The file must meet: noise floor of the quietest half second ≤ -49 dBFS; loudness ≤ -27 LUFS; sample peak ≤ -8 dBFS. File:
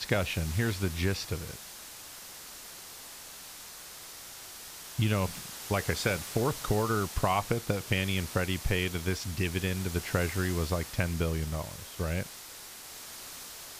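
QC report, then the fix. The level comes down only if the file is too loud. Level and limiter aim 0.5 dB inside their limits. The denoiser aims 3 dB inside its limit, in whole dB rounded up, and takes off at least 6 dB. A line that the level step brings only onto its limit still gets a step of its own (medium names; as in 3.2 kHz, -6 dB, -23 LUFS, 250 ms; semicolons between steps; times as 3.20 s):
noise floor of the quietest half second -46 dBFS: fail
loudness -31.5 LUFS: pass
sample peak -9.5 dBFS: pass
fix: noise reduction 6 dB, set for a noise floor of -46 dBFS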